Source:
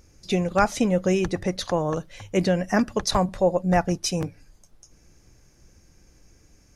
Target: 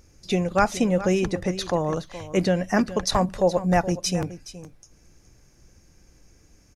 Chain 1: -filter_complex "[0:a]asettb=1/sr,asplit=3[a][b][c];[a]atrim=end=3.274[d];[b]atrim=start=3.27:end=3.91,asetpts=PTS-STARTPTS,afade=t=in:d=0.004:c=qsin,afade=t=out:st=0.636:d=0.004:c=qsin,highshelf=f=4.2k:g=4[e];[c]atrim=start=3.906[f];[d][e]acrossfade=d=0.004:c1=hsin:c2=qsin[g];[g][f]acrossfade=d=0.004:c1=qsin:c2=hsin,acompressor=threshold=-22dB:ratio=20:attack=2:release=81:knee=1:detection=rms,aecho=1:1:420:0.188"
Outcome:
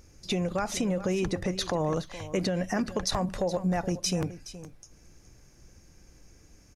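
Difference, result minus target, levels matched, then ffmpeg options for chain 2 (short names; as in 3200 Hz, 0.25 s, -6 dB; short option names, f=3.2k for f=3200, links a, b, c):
compressor: peak gain reduction +12 dB
-filter_complex "[0:a]asettb=1/sr,asplit=3[a][b][c];[a]atrim=end=3.274[d];[b]atrim=start=3.27:end=3.91,asetpts=PTS-STARTPTS,afade=t=in:d=0.004:c=qsin,afade=t=out:st=0.636:d=0.004:c=qsin,highshelf=f=4.2k:g=4[e];[c]atrim=start=3.906[f];[d][e]acrossfade=d=0.004:c1=hsin:c2=qsin[g];[g][f]acrossfade=d=0.004:c1=qsin:c2=hsin,aecho=1:1:420:0.188"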